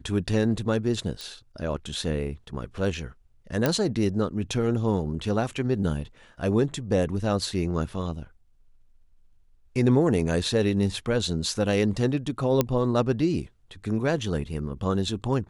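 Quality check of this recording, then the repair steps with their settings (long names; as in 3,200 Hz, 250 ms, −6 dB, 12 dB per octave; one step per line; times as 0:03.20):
0:01.21: click −21 dBFS
0:03.66: click −8 dBFS
0:12.61: click −7 dBFS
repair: click removal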